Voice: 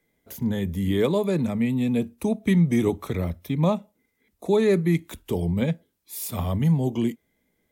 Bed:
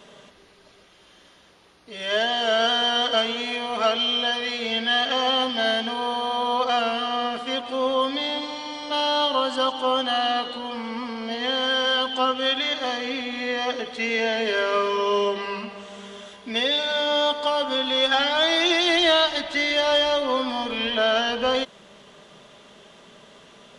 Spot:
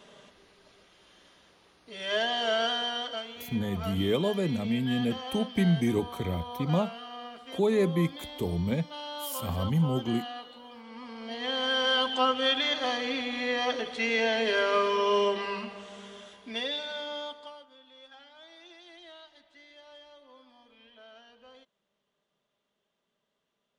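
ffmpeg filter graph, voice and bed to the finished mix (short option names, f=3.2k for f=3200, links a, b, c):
-filter_complex "[0:a]adelay=3100,volume=-5dB[a];[1:a]volume=8dB,afade=t=out:st=2.47:d=0.77:silence=0.281838,afade=t=in:st=10.85:d=1.17:silence=0.211349,afade=t=out:st=15.32:d=2.35:silence=0.0354813[b];[a][b]amix=inputs=2:normalize=0"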